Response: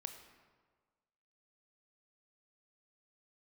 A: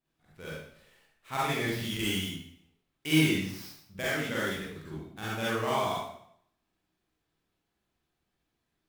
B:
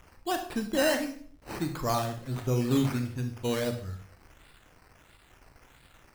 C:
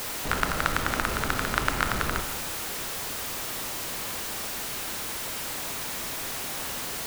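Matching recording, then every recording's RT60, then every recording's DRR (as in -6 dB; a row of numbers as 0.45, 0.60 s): C; 0.65, 0.50, 1.5 s; -8.0, 5.0, 6.5 dB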